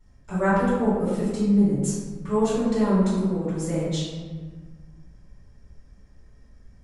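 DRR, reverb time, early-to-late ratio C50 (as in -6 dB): -12.5 dB, 1.5 s, -1.5 dB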